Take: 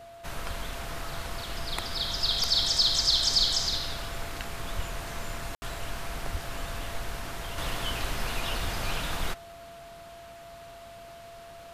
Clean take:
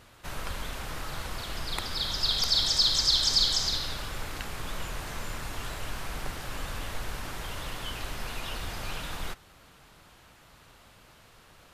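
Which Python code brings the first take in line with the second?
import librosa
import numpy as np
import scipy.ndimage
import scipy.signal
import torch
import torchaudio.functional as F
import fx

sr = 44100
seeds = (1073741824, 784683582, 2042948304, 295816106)

y = fx.notch(x, sr, hz=680.0, q=30.0)
y = fx.highpass(y, sr, hz=140.0, slope=24, at=(4.75, 4.87), fade=0.02)
y = fx.highpass(y, sr, hz=140.0, slope=24, at=(6.31, 6.43), fade=0.02)
y = fx.fix_ambience(y, sr, seeds[0], print_start_s=9.95, print_end_s=10.45, start_s=5.55, end_s=5.62)
y = fx.fix_level(y, sr, at_s=7.58, step_db=-4.5)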